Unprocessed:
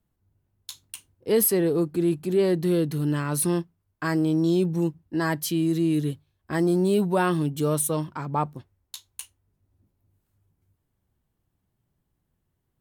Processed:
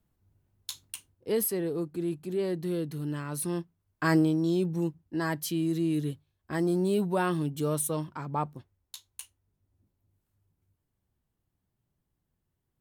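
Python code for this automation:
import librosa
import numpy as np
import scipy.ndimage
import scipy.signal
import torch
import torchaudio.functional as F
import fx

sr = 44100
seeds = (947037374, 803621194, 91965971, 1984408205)

y = fx.gain(x, sr, db=fx.line((0.8, 1.0), (1.48, -8.5), (3.46, -8.5), (4.15, 2.0), (4.37, -5.0)))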